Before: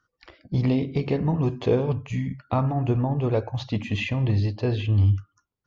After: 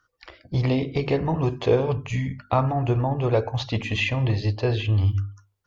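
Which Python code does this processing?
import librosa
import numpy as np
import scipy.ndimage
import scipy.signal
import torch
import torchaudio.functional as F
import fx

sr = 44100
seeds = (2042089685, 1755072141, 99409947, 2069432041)

p1 = fx.peak_eq(x, sr, hz=200.0, db=-8.5, octaves=1.2)
p2 = fx.hum_notches(p1, sr, base_hz=50, count=9)
p3 = fx.rider(p2, sr, range_db=3, speed_s=0.5)
y = p2 + (p3 * 10.0 ** (-2.0 / 20.0))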